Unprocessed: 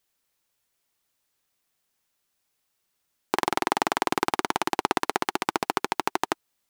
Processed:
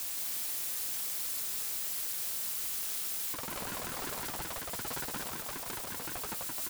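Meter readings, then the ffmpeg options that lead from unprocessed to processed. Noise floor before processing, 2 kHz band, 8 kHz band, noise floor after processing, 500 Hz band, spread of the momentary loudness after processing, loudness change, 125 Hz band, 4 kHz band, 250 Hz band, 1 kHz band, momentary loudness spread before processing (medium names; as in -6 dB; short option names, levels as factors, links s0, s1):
-77 dBFS, -11.5 dB, +4.0 dB, -40 dBFS, -14.5 dB, 4 LU, -6.5 dB, -4.0 dB, -5.5 dB, -14.5 dB, -17.0 dB, 3 LU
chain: -filter_complex "[0:a]aeval=exprs='val(0)+0.5*0.0794*sgn(val(0))':c=same,agate=range=0.316:threshold=0.0794:ratio=16:detection=peak,asplit=2[s0][s1];[s1]aecho=0:1:173|346|519|692|865|1038:0.562|0.264|0.124|0.0584|0.0274|0.0129[s2];[s0][s2]amix=inputs=2:normalize=0,asoftclip=type=tanh:threshold=0.106,highshelf=f=4300:g=10.5,alimiter=limit=0.0944:level=0:latency=1:release=148,bandreject=f=6200:w=21,aeval=exprs='val(0)*sin(2*PI*400*n/s+400*0.75/5.4*sin(2*PI*5.4*n/s))':c=same,volume=0.596"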